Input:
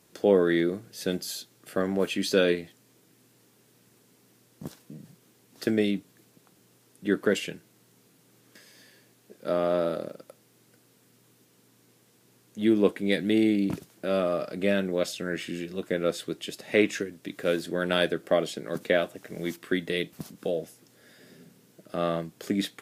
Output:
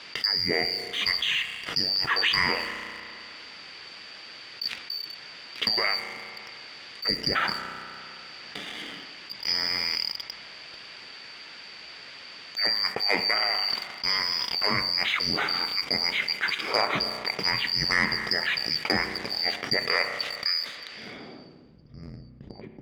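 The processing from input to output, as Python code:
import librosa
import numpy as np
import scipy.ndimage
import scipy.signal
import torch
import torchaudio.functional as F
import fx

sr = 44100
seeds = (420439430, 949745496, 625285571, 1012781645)

y = fx.band_shuffle(x, sr, order='2341')
y = fx.env_lowpass_down(y, sr, base_hz=2900.0, full_db=-20.0)
y = fx.weighting(y, sr, curve='D')
y = fx.rev_spring(y, sr, rt60_s=1.8, pass_ms=(32,), chirp_ms=60, drr_db=13.5)
y = fx.filter_sweep_lowpass(y, sr, from_hz=2100.0, to_hz=150.0, start_s=21.0, end_s=21.81, q=0.84)
y = fx.leveller(y, sr, passes=1)
y = fx.env_flatten(y, sr, amount_pct=50)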